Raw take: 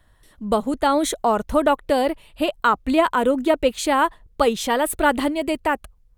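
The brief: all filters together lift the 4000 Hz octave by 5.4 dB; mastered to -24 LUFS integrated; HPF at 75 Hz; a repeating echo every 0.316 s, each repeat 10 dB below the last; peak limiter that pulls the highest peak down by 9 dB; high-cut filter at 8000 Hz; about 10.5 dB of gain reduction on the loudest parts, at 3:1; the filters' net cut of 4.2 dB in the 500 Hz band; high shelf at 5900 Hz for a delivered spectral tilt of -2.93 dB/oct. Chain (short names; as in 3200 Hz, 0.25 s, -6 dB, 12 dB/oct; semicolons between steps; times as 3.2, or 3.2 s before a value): HPF 75 Hz; LPF 8000 Hz; bell 500 Hz -5.5 dB; bell 4000 Hz +5 dB; high shelf 5900 Hz +7.5 dB; compressor 3:1, threshold -29 dBFS; limiter -22.5 dBFS; feedback echo 0.316 s, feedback 32%, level -10 dB; gain +8.5 dB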